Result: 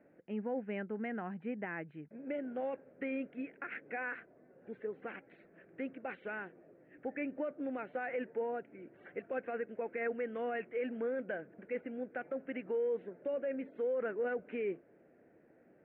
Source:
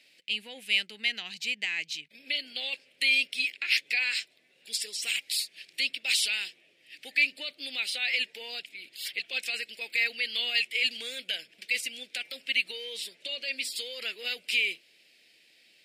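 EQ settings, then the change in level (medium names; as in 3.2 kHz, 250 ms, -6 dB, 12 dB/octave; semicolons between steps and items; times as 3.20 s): elliptic low-pass 1.5 kHz, stop band 70 dB; distance through air 89 m; tilt shelf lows +6 dB, about 900 Hz; +8.5 dB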